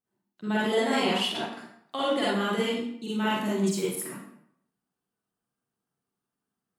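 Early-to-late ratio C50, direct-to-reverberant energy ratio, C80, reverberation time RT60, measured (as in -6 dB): -3.5 dB, -8.0 dB, 2.5 dB, 0.70 s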